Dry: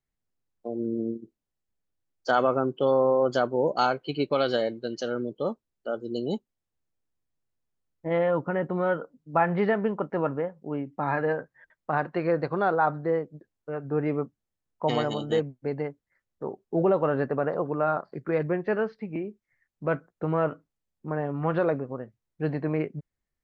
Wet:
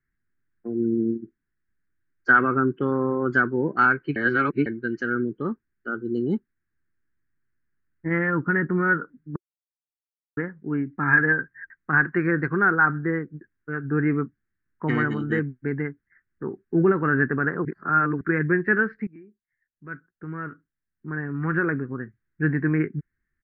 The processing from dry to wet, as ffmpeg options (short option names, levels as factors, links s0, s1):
-filter_complex "[0:a]asplit=8[s0][s1][s2][s3][s4][s5][s6][s7];[s0]atrim=end=4.162[s8];[s1]atrim=start=4.158:end=4.662,asetpts=PTS-STARTPTS,areverse[s9];[s2]atrim=start=4.658:end=9.36,asetpts=PTS-STARTPTS,afade=t=out:st=4.698:d=0.004:c=hsin[s10];[s3]atrim=start=9.36:end=10.37,asetpts=PTS-STARTPTS,volume=0[s11];[s4]atrim=start=10.37:end=17.652,asetpts=PTS-STARTPTS,afade=t=in:d=0.004:c=hsin[s12];[s5]atrim=start=17.648:end=18.212,asetpts=PTS-STARTPTS,areverse[s13];[s6]atrim=start=18.208:end=19.07,asetpts=PTS-STARTPTS,afade=t=out:st=0.858:d=0.004:c=hsin:silence=0.0944061[s14];[s7]atrim=start=19.07,asetpts=PTS-STARTPTS,afade=t=in:d=2.96:c=qua:silence=0.0944061[s15];[s8][s9]acrossfade=d=0.004:c1=hsin:c2=hsin[s16];[s10][s11][s12]concat=n=3:v=0:a=1[s17];[s16][s17]acrossfade=d=0.004:c1=hsin:c2=hsin[s18];[s18][s13]acrossfade=d=0.004:c1=hsin:c2=hsin[s19];[s14][s15]concat=n=2:v=0:a=1[s20];[s19][s20]acrossfade=d=0.004:c1=hsin:c2=hsin,firequalizer=gain_entry='entry(360,0);entry(580,-22);entry(1600,11);entry(3300,-23)':delay=0.05:min_phase=1,volume=2.11"